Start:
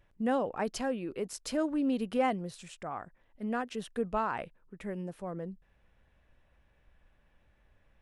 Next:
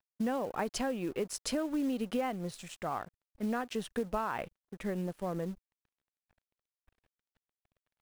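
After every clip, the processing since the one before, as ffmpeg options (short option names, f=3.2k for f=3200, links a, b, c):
-af "acompressor=threshold=-33dB:ratio=12,aeval=exprs='sgn(val(0))*max(abs(val(0))-0.00126,0)':c=same,acrusher=bits=6:mode=log:mix=0:aa=0.000001,volume=4.5dB"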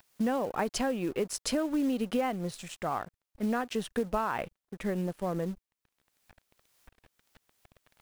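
-af "acompressor=mode=upward:threshold=-49dB:ratio=2.5,volume=3.5dB"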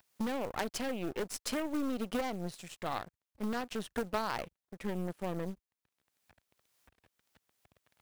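-af "highpass=61,aeval=exprs='0.178*(cos(1*acos(clip(val(0)/0.178,-1,1)))-cos(1*PI/2))+0.0794*(cos(6*acos(clip(val(0)/0.178,-1,1)))-cos(6*PI/2))+0.0708*(cos(8*acos(clip(val(0)/0.178,-1,1)))-cos(8*PI/2))':c=same,volume=-5.5dB"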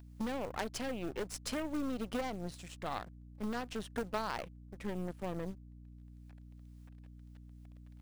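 -af "equalizer=f=15k:t=o:w=0.4:g=-8,aeval=exprs='val(0)+0.00355*(sin(2*PI*60*n/s)+sin(2*PI*2*60*n/s)/2+sin(2*PI*3*60*n/s)/3+sin(2*PI*4*60*n/s)/4+sin(2*PI*5*60*n/s)/5)':c=same,volume=-2.5dB"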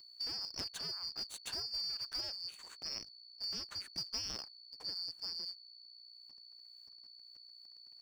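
-af "afftfilt=real='real(if(lt(b,272),68*(eq(floor(b/68),0)*1+eq(floor(b/68),1)*2+eq(floor(b/68),2)*3+eq(floor(b/68),3)*0)+mod(b,68),b),0)':imag='imag(if(lt(b,272),68*(eq(floor(b/68),0)*1+eq(floor(b/68),1)*2+eq(floor(b/68),2)*3+eq(floor(b/68),3)*0)+mod(b,68),b),0)':win_size=2048:overlap=0.75,volume=-4dB"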